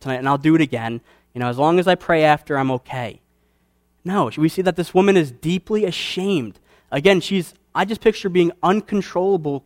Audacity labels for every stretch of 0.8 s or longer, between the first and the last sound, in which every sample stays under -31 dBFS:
3.120000	4.060000	silence